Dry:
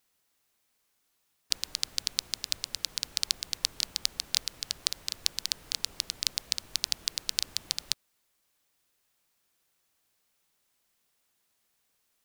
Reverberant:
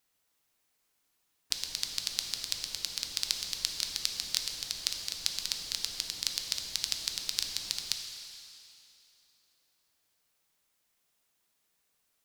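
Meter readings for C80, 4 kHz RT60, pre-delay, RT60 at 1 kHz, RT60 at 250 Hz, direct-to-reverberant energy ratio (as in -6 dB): 5.5 dB, 2.8 s, 5 ms, 2.8 s, 2.6 s, 3.5 dB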